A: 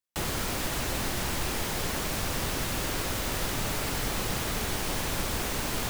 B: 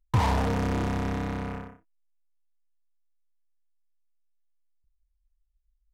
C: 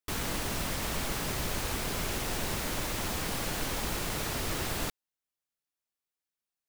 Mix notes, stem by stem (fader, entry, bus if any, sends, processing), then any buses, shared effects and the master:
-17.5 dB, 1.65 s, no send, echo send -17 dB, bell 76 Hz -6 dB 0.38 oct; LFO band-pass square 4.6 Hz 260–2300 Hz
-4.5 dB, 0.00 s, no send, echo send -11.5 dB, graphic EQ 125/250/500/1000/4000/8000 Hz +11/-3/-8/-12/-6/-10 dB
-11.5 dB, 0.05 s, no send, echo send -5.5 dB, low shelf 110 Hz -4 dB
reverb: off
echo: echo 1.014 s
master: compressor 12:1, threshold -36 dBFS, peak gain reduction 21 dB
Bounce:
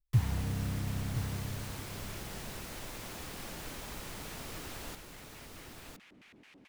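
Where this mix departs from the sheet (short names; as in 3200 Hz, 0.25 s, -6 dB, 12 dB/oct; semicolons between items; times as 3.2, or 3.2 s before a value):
stem B -4.5 dB -> -10.5 dB; stem C: missing low shelf 110 Hz -4 dB; master: missing compressor 12:1, threshold -36 dBFS, peak gain reduction 21 dB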